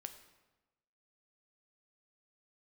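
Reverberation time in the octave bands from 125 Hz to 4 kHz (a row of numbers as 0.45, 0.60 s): 1.2, 1.2, 1.1, 1.1, 0.95, 0.85 s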